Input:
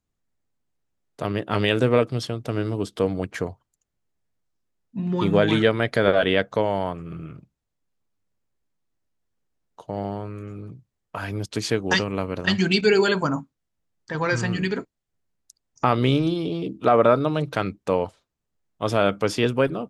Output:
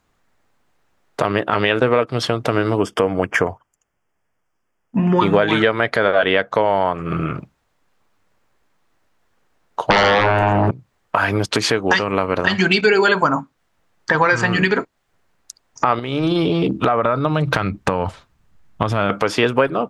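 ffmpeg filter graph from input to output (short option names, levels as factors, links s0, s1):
-filter_complex "[0:a]asettb=1/sr,asplit=3[s0][s1][s2];[s0]atrim=end=1.504[s3];[s1]atrim=start=1.5:end=2.09,asetpts=PTS-STARTPTS,afade=t=in:d=0.004:c=qsin,afade=t=out:st=0.586:d=0.004:c=qsin,acrossover=split=5100[s4][s5];[s5]acompressor=threshold=0.00224:ratio=4:attack=1:release=60[s6];[s4][s6]amix=inputs=2:normalize=0,agate=range=0.398:threshold=0.0501:ratio=16:release=100:detection=peak[s7];[s2]atrim=start=2.086[s8];[s3][s7]acrossfade=d=0.004:c1=hsin:c2=qsin[s9];[s9][s8]acrossfade=d=0.004:c1=qsin:c2=hsin,asettb=1/sr,asplit=3[s10][s11][s12];[s10]atrim=end=2.794[s13];[s11]atrim=start=2.79:end=5.2,asetpts=PTS-STARTPTS,afade=t=in:d=0.004:c=qsin,afade=t=out:st=2.406:d=0.004:c=qsin,asuperstop=centerf=4000:order=4:qfactor=2.7,agate=range=0.398:threshold=0.00251:ratio=16:release=100:detection=peak[s14];[s12]atrim=start=5.196[s15];[s13][s14]acrossfade=d=0.004:c1=hsin:c2=qsin[s16];[s16][s15]acrossfade=d=0.004:c1=qsin:c2=hsin,asettb=1/sr,asplit=3[s17][s18][s19];[s17]atrim=end=9.904[s20];[s18]atrim=start=9.9:end=10.71,asetpts=PTS-STARTPTS,afade=t=in:d=0.004:c=qsin,afade=t=out:st=0.806:d=0.004:c=qsin,highshelf=f=2900:g=-10.5,bandreject=f=60:t=h:w=6,bandreject=f=120:t=h:w=6,bandreject=f=180:t=h:w=6,bandreject=f=240:t=h:w=6,bandreject=f=300:t=h:w=6,bandreject=f=360:t=h:w=6,bandreject=f=420:t=h:w=6,bandreject=f=480:t=h:w=6,bandreject=f=540:t=h:w=6,aeval=exprs='0.15*sin(PI/2*7.94*val(0)/0.15)':c=same[s21];[s19]atrim=start=10.706[s22];[s20][s21]acrossfade=d=0.004:c1=hsin:c2=qsin[s23];[s23][s22]acrossfade=d=0.004:c1=qsin:c2=hsin,asettb=1/sr,asplit=3[s24][s25][s26];[s24]atrim=end=15.994[s27];[s25]atrim=start=15.99:end=19.1,asetpts=PTS-STARTPTS,afade=t=in:d=0.004:c=qsin,afade=t=out:st=3.106:d=0.004:c=qsin,asubboost=boost=7:cutoff=200,acompressor=threshold=0.0562:ratio=10:attack=3.2:release=140:knee=1:detection=peak[s28];[s26]atrim=start=19.096[s29];[s27][s28]acrossfade=d=0.004:c1=hsin:c2=qsin[s30];[s30][s29]acrossfade=d=0.004:c1=qsin:c2=hsin,equalizer=f=1200:w=0.38:g=12.5,acompressor=threshold=0.0501:ratio=4,alimiter=level_in=4.22:limit=0.891:release=50:level=0:latency=1,volume=0.891"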